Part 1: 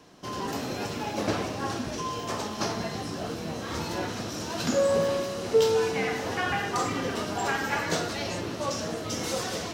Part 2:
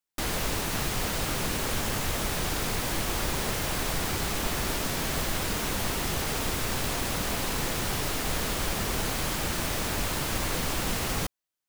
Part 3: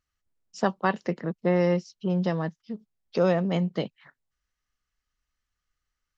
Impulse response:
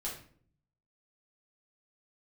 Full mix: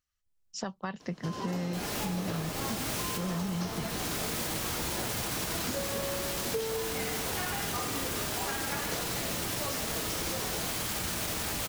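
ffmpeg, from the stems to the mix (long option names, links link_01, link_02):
-filter_complex "[0:a]bandreject=frequency=79.1:width_type=h:width=4,bandreject=frequency=158.2:width_type=h:width=4,bandreject=frequency=237.3:width_type=h:width=4,bandreject=frequency=316.4:width_type=h:width=4,bandreject=frequency=395.5:width_type=h:width=4,bandreject=frequency=474.6:width_type=h:width=4,bandreject=frequency=553.7:width_type=h:width=4,bandreject=frequency=632.8:width_type=h:width=4,bandreject=frequency=711.9:width_type=h:width=4,bandreject=frequency=791:width_type=h:width=4,bandreject=frequency=870.1:width_type=h:width=4,bandreject=frequency=949.2:width_type=h:width=4,bandreject=frequency=1028.3:width_type=h:width=4,bandreject=frequency=1107.4:width_type=h:width=4,bandreject=frequency=1186.5:width_type=h:width=4,bandreject=frequency=1265.6:width_type=h:width=4,bandreject=frequency=1344.7:width_type=h:width=4,bandreject=frequency=1423.8:width_type=h:width=4,bandreject=frequency=1502.9:width_type=h:width=4,bandreject=frequency=1582:width_type=h:width=4,bandreject=frequency=1661.1:width_type=h:width=4,bandreject=frequency=1740.2:width_type=h:width=4,bandreject=frequency=1819.3:width_type=h:width=4,bandreject=frequency=1898.4:width_type=h:width=4,bandreject=frequency=1977.5:width_type=h:width=4,bandreject=frequency=2056.6:width_type=h:width=4,bandreject=frequency=2135.7:width_type=h:width=4,bandreject=frequency=2214.8:width_type=h:width=4,bandreject=frequency=2293.9:width_type=h:width=4,bandreject=frequency=2373:width_type=h:width=4,bandreject=frequency=2452.1:width_type=h:width=4,bandreject=frequency=2531.2:width_type=h:width=4,bandreject=frequency=2610.3:width_type=h:width=4,bandreject=frequency=2689.4:width_type=h:width=4,bandreject=frequency=2768.5:width_type=h:width=4,bandreject=frequency=2847.6:width_type=h:width=4,bandreject=frequency=2926.7:width_type=h:width=4,bandreject=frequency=3005.8:width_type=h:width=4,adelay=1000,volume=-2dB[link_01];[1:a]highpass=58,alimiter=level_in=0.5dB:limit=-24dB:level=0:latency=1,volume=-0.5dB,adelay=1550,volume=2.5dB,asplit=2[link_02][link_03];[link_03]volume=-6dB[link_04];[2:a]asubboost=boost=11.5:cutoff=160,dynaudnorm=framelen=150:gausssize=5:maxgain=5dB,volume=-7dB,asplit=2[link_05][link_06];[link_06]apad=whole_len=583564[link_07];[link_02][link_07]sidechaincompress=threshold=-27dB:ratio=8:attack=16:release=930[link_08];[link_08][link_05]amix=inputs=2:normalize=0,highshelf=frequency=2800:gain=8,alimiter=limit=-21dB:level=0:latency=1:release=396,volume=0dB[link_09];[3:a]atrim=start_sample=2205[link_10];[link_04][link_10]afir=irnorm=-1:irlink=0[link_11];[link_01][link_09][link_11]amix=inputs=3:normalize=0,acompressor=threshold=-30dB:ratio=6"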